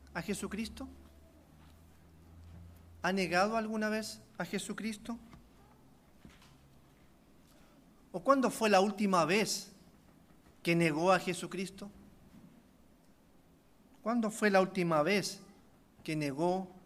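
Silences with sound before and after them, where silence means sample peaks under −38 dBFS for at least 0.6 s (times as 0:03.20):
0:00.85–0:03.04
0:05.14–0:08.14
0:09.63–0:10.65
0:11.84–0:14.06
0:15.34–0:16.06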